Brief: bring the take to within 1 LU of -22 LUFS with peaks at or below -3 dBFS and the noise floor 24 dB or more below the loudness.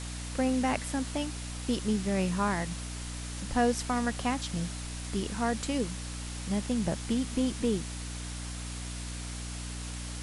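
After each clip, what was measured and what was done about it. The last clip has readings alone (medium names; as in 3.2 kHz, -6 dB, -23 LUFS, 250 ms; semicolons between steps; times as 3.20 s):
hum 60 Hz; highest harmonic 300 Hz; hum level -36 dBFS; noise floor -38 dBFS; noise floor target -57 dBFS; loudness -32.5 LUFS; peak level -13.5 dBFS; loudness target -22.0 LUFS
-> hum notches 60/120/180/240/300 Hz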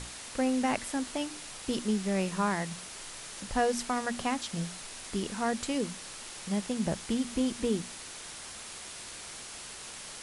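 hum not found; noise floor -44 dBFS; noise floor target -58 dBFS
-> noise reduction 14 dB, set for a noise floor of -44 dBFS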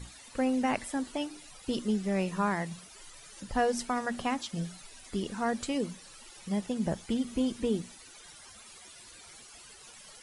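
noise floor -52 dBFS; noise floor target -57 dBFS
-> noise reduction 6 dB, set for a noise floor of -52 dBFS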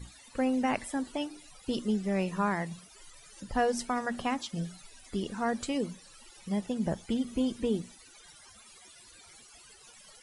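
noise floor -55 dBFS; noise floor target -57 dBFS
-> noise reduction 6 dB, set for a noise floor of -55 dBFS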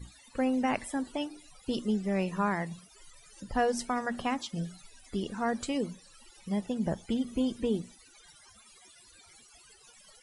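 noise floor -58 dBFS; loudness -32.5 LUFS; peak level -15.0 dBFS; loudness target -22.0 LUFS
-> trim +10.5 dB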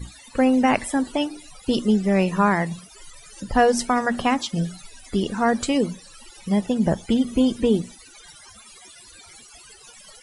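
loudness -22.0 LUFS; peak level -4.5 dBFS; noise floor -48 dBFS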